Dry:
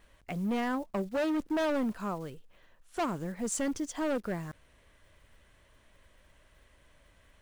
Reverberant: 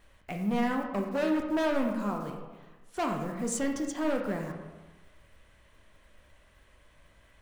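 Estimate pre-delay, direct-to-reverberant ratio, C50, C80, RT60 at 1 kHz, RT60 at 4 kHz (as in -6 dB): 14 ms, 2.0 dB, 5.0 dB, 7.0 dB, 1.3 s, 0.75 s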